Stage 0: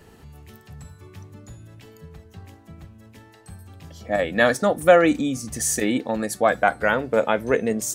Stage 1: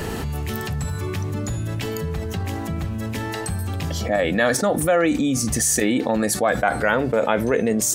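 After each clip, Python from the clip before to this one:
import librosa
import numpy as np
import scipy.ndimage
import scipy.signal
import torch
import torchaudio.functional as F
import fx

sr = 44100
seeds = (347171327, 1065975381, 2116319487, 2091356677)

y = fx.env_flatten(x, sr, amount_pct=70)
y = F.gain(torch.from_numpy(y), -6.5).numpy()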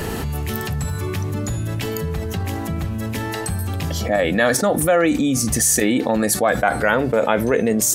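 y = fx.peak_eq(x, sr, hz=12000.0, db=5.5, octaves=0.41)
y = F.gain(torch.from_numpy(y), 2.0).numpy()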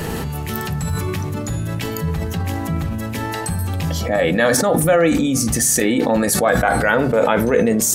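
y = fx.rev_fdn(x, sr, rt60_s=0.47, lf_ratio=1.2, hf_ratio=0.35, size_ms=36.0, drr_db=9.5)
y = fx.sustainer(y, sr, db_per_s=28.0)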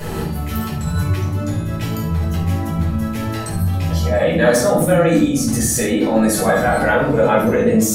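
y = x + 10.0 ** (-11.0 / 20.0) * np.pad(x, (int(71 * sr / 1000.0), 0))[:len(x)]
y = fx.room_shoebox(y, sr, seeds[0], volume_m3=370.0, walls='furnished', distance_m=5.0)
y = F.gain(torch.from_numpy(y), -9.0).numpy()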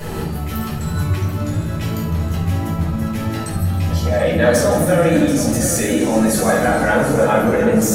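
y = fx.echo_feedback(x, sr, ms=732, feedback_pct=48, wet_db=-11)
y = fx.echo_warbled(y, sr, ms=158, feedback_pct=63, rate_hz=2.8, cents=131, wet_db=-11.0)
y = F.gain(torch.from_numpy(y), -1.0).numpy()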